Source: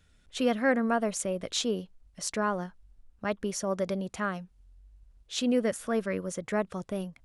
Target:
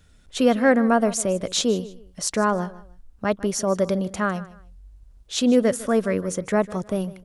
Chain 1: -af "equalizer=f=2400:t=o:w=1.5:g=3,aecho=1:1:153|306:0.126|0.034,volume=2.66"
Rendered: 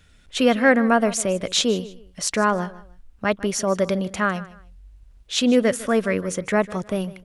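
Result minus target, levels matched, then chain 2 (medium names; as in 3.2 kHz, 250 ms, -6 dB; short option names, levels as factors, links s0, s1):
2 kHz band +4.0 dB
-af "equalizer=f=2400:t=o:w=1.5:g=-4,aecho=1:1:153|306:0.126|0.034,volume=2.66"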